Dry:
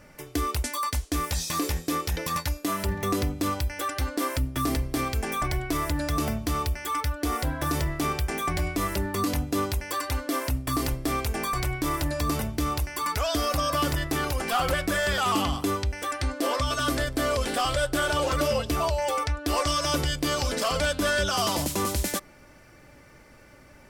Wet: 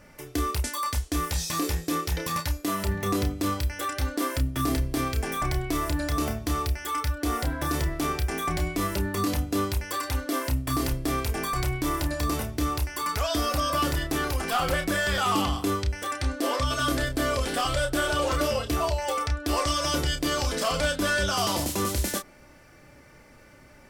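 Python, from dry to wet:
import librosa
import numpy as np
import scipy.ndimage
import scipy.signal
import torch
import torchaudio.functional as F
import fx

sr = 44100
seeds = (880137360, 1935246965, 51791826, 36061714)

y = fx.doubler(x, sr, ms=30.0, db=-7.0)
y = y * librosa.db_to_amplitude(-1.0)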